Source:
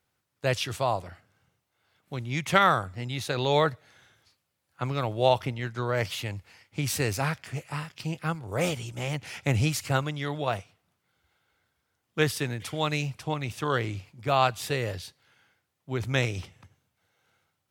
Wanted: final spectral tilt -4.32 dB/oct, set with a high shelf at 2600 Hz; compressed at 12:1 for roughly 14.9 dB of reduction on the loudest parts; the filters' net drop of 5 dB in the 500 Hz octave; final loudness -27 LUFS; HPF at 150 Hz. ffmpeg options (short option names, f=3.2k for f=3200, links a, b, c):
-af "highpass=150,equalizer=f=500:t=o:g=-6.5,highshelf=f=2.6k:g=4,acompressor=threshold=-30dB:ratio=12,volume=9dB"